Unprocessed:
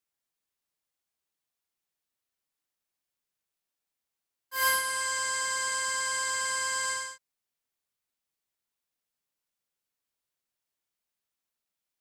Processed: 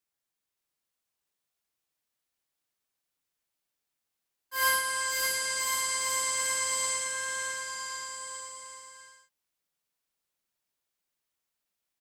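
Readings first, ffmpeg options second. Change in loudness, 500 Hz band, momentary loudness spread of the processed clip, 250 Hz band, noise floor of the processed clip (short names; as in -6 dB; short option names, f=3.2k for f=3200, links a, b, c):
-0.5 dB, +2.0 dB, 14 LU, +2.0 dB, under -85 dBFS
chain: -af "aecho=1:1:570|1054|1466|1816|2114:0.631|0.398|0.251|0.158|0.1"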